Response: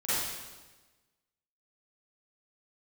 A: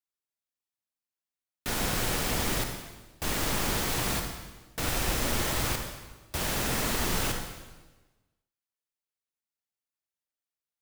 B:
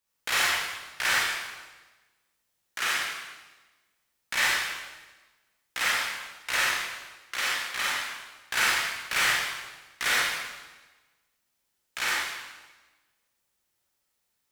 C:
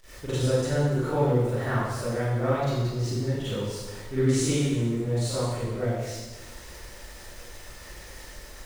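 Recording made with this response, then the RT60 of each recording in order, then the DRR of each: C; 1.2 s, 1.2 s, 1.2 s; 3.5 dB, -6.5 dB, -14.5 dB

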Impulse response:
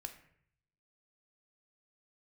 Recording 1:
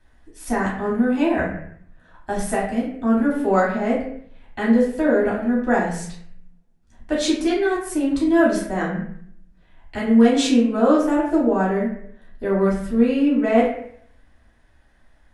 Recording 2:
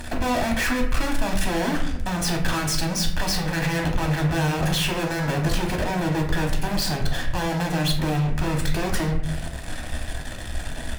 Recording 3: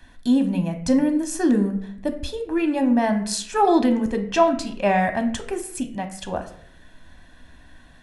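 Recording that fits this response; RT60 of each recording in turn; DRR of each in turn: 3; 0.65 s, 0.65 s, 0.65 s; -7.5 dB, 0.5 dB, 6.0 dB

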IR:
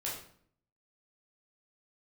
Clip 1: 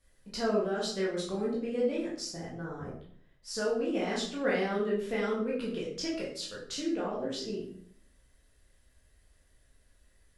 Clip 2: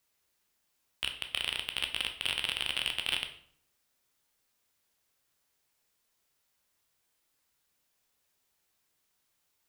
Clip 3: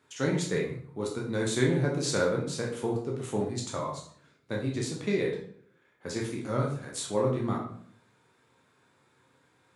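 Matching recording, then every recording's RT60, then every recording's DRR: 1; 0.60 s, 0.60 s, 0.60 s; -6.0 dB, 5.0 dB, -2.0 dB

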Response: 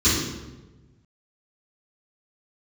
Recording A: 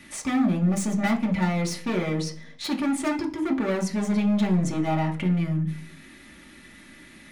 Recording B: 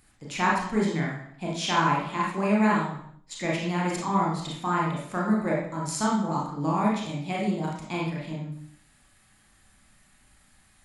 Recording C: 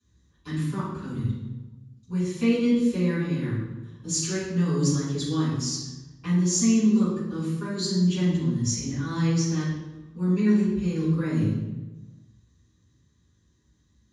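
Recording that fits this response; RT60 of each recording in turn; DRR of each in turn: C; 0.45 s, 0.65 s, 1.2 s; -0.5 dB, -4.0 dB, -13.5 dB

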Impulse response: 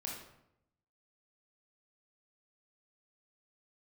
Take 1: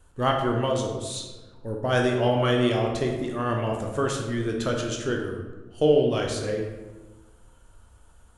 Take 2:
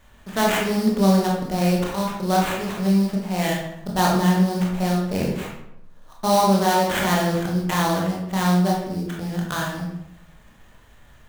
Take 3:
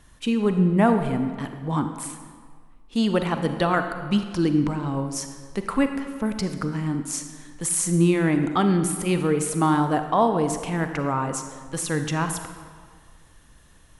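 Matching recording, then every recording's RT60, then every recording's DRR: 2; 1.3 s, 0.80 s, 1.7 s; 0.5 dB, -2.5 dB, 7.0 dB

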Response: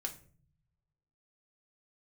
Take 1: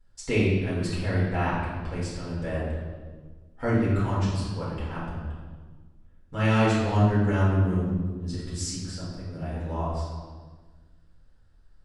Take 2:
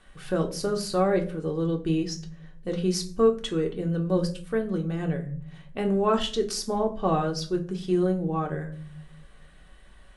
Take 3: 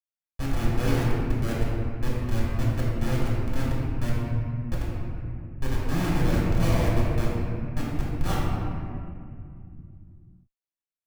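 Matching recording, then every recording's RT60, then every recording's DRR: 2; 1.5 s, 0.45 s, 2.4 s; -9.5 dB, 2.0 dB, -7.0 dB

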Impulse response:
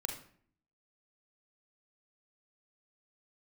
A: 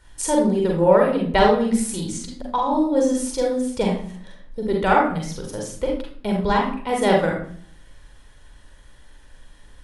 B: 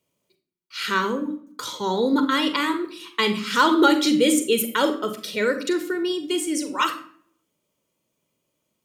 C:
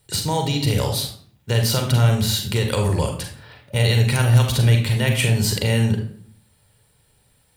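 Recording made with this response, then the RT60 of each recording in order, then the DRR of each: C; 0.55 s, 0.55 s, 0.55 s; -1.0 dB, 7.5 dB, 3.0 dB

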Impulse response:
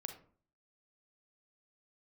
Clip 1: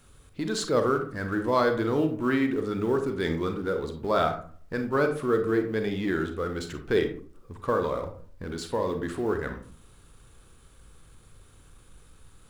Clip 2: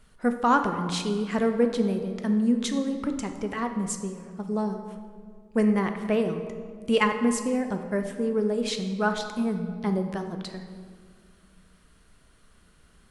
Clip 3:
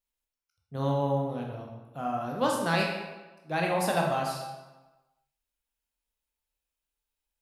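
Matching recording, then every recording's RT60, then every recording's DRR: 1; 0.45 s, 2.0 s, 1.2 s; 6.0 dB, 6.0 dB, -1.0 dB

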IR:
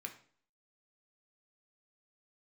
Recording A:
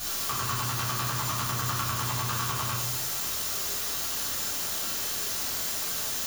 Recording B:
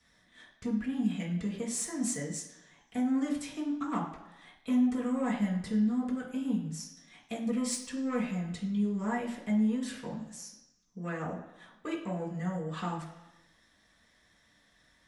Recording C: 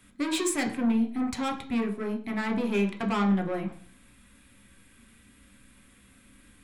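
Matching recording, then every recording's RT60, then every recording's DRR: C; 0.75 s, 1.0 s, 0.50 s; -8.5 dB, -6.5 dB, 3.5 dB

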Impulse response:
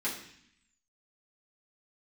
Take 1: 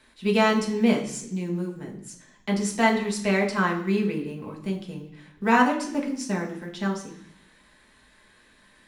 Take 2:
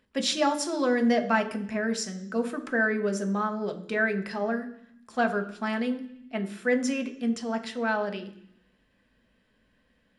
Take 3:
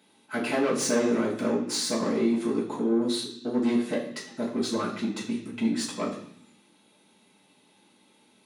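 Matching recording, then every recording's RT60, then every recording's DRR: 3; 0.65 s, 0.65 s, 0.65 s; -1.5 dB, 5.0 dB, -8.0 dB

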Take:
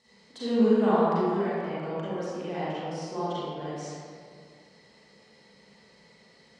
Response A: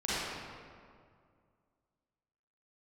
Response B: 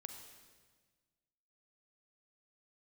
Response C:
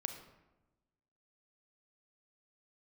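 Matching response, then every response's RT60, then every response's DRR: A; 2.1 s, 1.5 s, 1.1 s; -11.5 dB, 5.0 dB, 6.5 dB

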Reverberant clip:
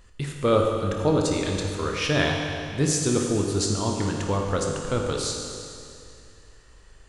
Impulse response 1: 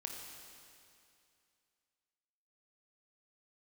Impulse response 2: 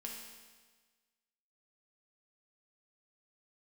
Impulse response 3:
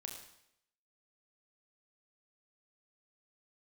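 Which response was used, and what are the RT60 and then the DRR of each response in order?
1; 2.5 s, 1.4 s, 0.75 s; 0.5 dB, -1.5 dB, 2.0 dB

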